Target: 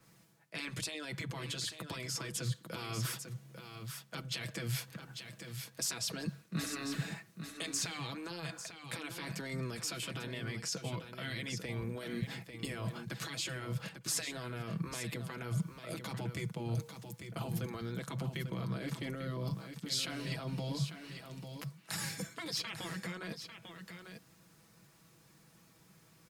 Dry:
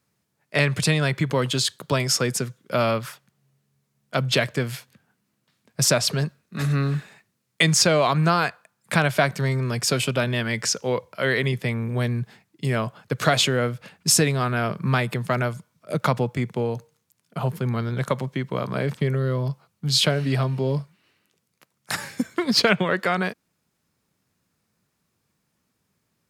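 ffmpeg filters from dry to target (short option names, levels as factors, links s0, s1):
-filter_complex "[0:a]afftfilt=real='re*lt(hypot(re,im),0.355)':imag='im*lt(hypot(re,im),0.355)':win_size=1024:overlap=0.75,aecho=1:1:6.1:0.55,areverse,acompressor=threshold=0.0158:ratio=10,areverse,alimiter=level_in=2.37:limit=0.0631:level=0:latency=1:release=99,volume=0.422,acrossover=split=240|3000[s0][s1][s2];[s1]acompressor=threshold=0.00224:ratio=5[s3];[s0][s3][s2]amix=inputs=3:normalize=0,asplit=2[s4][s5];[s5]aecho=0:1:846:0.376[s6];[s4][s6]amix=inputs=2:normalize=0,adynamicequalizer=threshold=0.00112:dfrequency=2500:dqfactor=0.7:tfrequency=2500:tqfactor=0.7:attack=5:release=100:ratio=0.375:range=2.5:mode=cutabove:tftype=highshelf,volume=2.51"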